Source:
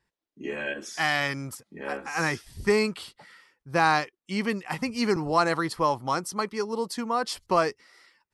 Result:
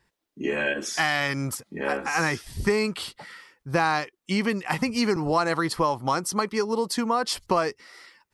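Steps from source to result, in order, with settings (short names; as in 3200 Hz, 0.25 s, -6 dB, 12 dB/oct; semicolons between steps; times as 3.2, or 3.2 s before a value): compressor 3:1, threshold -30 dBFS, peak gain reduction 10.5 dB; gain +8 dB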